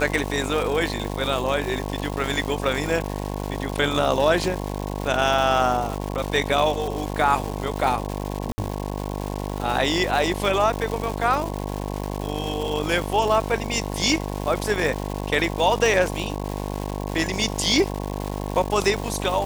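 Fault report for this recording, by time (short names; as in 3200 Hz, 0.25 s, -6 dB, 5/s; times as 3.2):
buzz 50 Hz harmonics 22 -29 dBFS
crackle 400/s -27 dBFS
8.52–8.58 gap 60 ms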